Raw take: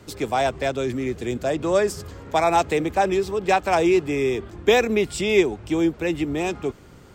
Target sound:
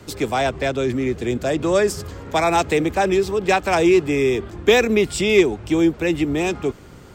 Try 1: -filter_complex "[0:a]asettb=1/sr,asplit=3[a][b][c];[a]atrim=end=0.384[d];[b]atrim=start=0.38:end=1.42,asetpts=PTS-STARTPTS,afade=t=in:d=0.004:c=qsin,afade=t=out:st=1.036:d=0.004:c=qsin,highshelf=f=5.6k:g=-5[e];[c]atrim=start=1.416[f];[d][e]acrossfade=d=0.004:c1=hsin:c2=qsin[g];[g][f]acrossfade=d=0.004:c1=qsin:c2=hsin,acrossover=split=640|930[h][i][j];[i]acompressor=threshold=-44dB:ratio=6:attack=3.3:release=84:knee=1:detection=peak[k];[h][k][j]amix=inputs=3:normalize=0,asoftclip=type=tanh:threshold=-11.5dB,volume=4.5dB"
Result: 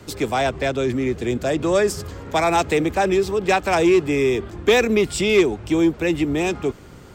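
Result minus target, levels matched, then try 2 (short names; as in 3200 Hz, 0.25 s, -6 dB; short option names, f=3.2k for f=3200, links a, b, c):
soft clip: distortion +10 dB
-filter_complex "[0:a]asettb=1/sr,asplit=3[a][b][c];[a]atrim=end=0.384[d];[b]atrim=start=0.38:end=1.42,asetpts=PTS-STARTPTS,afade=t=in:d=0.004:c=qsin,afade=t=out:st=1.036:d=0.004:c=qsin,highshelf=f=5.6k:g=-5[e];[c]atrim=start=1.416[f];[d][e]acrossfade=d=0.004:c1=hsin:c2=qsin[g];[g][f]acrossfade=d=0.004:c1=qsin:c2=hsin,acrossover=split=640|930[h][i][j];[i]acompressor=threshold=-44dB:ratio=6:attack=3.3:release=84:knee=1:detection=peak[k];[h][k][j]amix=inputs=3:normalize=0,asoftclip=type=tanh:threshold=-5.5dB,volume=4.5dB"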